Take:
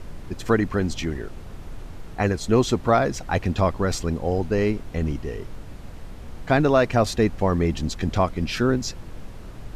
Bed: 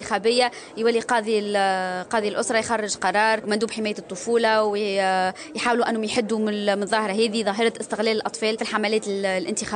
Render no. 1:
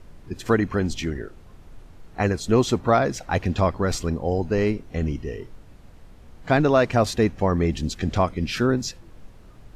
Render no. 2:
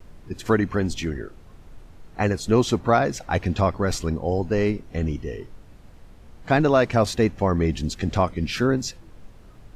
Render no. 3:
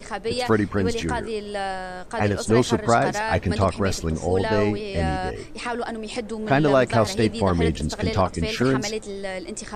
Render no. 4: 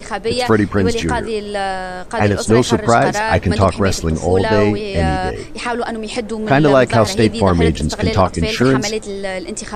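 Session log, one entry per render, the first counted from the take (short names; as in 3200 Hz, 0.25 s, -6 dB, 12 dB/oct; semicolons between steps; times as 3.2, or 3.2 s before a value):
noise print and reduce 9 dB
vibrato 1.4 Hz 43 cents
add bed -7 dB
gain +7.5 dB; limiter -1 dBFS, peak gain reduction 2.5 dB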